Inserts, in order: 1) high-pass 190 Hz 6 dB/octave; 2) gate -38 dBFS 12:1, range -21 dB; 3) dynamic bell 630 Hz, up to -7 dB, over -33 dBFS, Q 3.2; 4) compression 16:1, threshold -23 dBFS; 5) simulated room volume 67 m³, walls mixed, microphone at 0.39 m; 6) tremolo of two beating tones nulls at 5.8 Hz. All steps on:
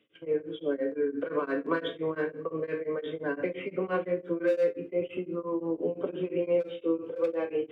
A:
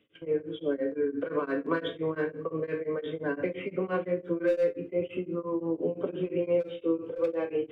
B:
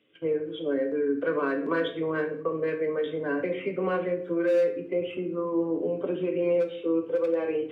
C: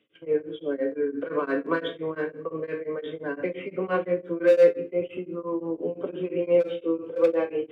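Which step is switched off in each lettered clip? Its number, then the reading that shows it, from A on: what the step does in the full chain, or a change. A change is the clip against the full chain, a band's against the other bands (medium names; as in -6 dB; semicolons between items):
1, 125 Hz band +3.5 dB; 6, loudness change +3.0 LU; 4, mean gain reduction 2.0 dB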